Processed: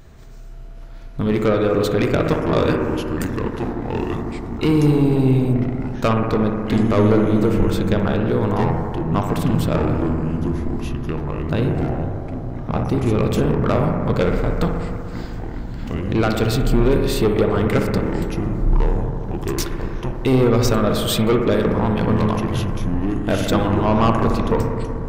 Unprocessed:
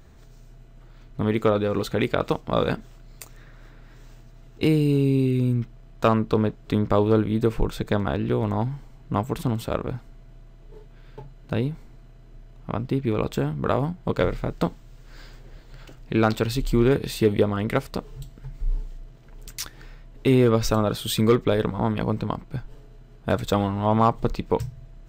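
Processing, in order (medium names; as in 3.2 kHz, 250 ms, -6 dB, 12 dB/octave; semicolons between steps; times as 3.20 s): saturation -17 dBFS, distortion -11 dB; bucket-brigade echo 61 ms, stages 1024, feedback 84%, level -7 dB; ever faster or slower copies 523 ms, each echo -5 st, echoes 3, each echo -6 dB; trim +5.5 dB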